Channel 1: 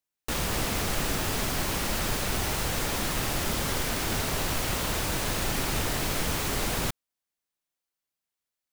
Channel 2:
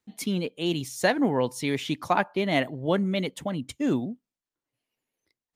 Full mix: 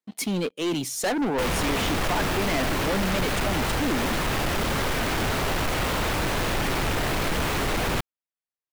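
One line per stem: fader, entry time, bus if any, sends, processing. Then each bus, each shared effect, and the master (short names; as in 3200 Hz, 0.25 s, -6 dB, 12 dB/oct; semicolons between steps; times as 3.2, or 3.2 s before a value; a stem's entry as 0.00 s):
-2.5 dB, 1.10 s, no send, tone controls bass -2 dB, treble -10 dB
-4.0 dB, 0.00 s, no send, HPF 180 Hz 12 dB/oct; soft clip -25.5 dBFS, distortion -8 dB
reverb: off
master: sample leveller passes 3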